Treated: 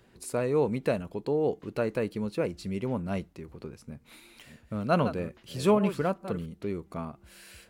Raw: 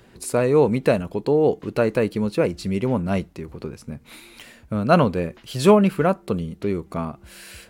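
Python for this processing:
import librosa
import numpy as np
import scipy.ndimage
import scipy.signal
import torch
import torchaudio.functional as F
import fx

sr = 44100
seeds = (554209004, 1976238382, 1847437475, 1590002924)

y = fx.reverse_delay(x, sr, ms=392, wet_db=-11.0, at=(3.83, 6.46))
y = y * librosa.db_to_amplitude(-9.0)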